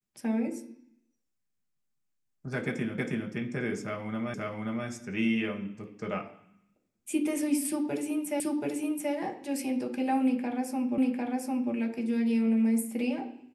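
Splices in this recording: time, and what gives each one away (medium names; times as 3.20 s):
2.98 s: repeat of the last 0.32 s
4.34 s: repeat of the last 0.53 s
8.40 s: repeat of the last 0.73 s
10.98 s: repeat of the last 0.75 s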